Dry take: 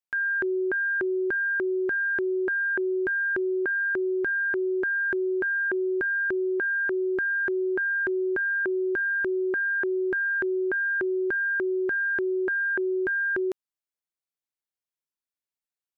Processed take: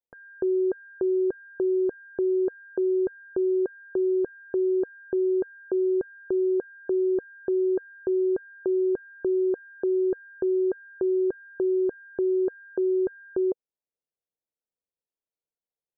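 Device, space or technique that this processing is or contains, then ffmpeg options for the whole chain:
under water: -af "lowpass=frequency=840:width=0.5412,lowpass=frequency=840:width=1.3066,equalizer=frequency=480:width_type=o:width=0.5:gain=9"

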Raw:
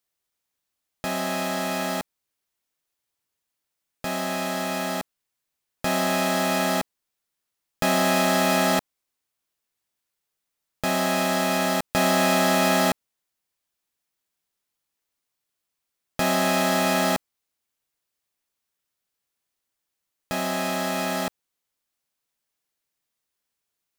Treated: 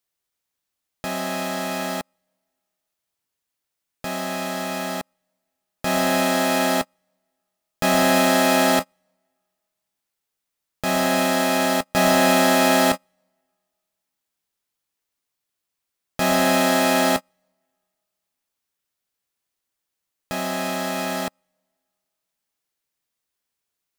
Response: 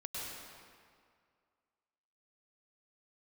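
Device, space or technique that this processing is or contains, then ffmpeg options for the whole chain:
keyed gated reverb: -filter_complex "[0:a]asplit=3[link_01][link_02][link_03];[1:a]atrim=start_sample=2205[link_04];[link_02][link_04]afir=irnorm=-1:irlink=0[link_05];[link_03]apad=whole_len=1057680[link_06];[link_05][link_06]sidechaingate=range=-40dB:threshold=-23dB:ratio=16:detection=peak,volume=-3dB[link_07];[link_01][link_07]amix=inputs=2:normalize=0"

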